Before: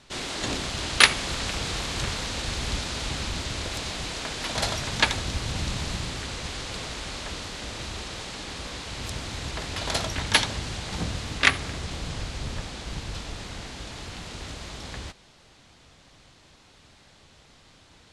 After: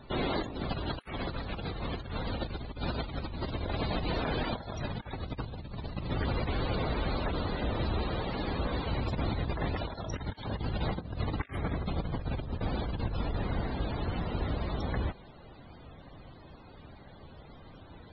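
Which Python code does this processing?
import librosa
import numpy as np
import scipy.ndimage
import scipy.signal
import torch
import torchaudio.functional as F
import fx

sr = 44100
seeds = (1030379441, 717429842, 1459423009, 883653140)

y = fx.tilt_shelf(x, sr, db=4.0, hz=1500.0)
y = fx.over_compress(y, sr, threshold_db=-32.0, ratio=-0.5)
y = fx.spec_topn(y, sr, count=64)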